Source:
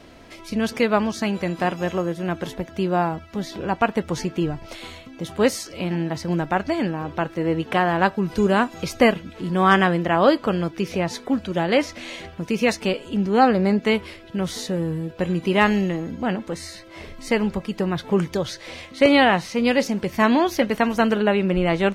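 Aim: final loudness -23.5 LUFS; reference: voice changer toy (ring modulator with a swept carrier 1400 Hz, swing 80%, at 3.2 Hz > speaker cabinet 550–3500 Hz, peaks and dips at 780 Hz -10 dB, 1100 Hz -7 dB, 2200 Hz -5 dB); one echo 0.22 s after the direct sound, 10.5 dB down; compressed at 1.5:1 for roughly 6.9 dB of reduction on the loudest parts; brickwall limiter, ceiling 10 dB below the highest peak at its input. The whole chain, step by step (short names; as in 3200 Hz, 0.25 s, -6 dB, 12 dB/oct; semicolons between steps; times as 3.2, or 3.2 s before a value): compressor 1.5:1, threshold -30 dBFS; limiter -20.5 dBFS; echo 0.22 s -10.5 dB; ring modulator with a swept carrier 1400 Hz, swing 80%, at 3.2 Hz; speaker cabinet 550–3500 Hz, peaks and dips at 780 Hz -10 dB, 1100 Hz -7 dB, 2200 Hz -5 dB; gain +12 dB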